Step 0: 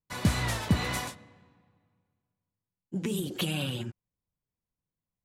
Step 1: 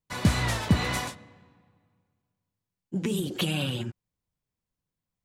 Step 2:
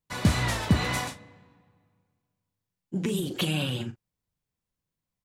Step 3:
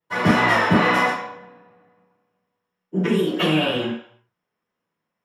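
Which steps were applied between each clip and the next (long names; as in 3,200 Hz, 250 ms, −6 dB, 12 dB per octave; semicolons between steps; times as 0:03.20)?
parametric band 13,000 Hz −4 dB 0.89 octaves; level +3 dB
double-tracking delay 39 ms −12 dB
convolution reverb RT60 0.60 s, pre-delay 3 ms, DRR −15 dB; level −6 dB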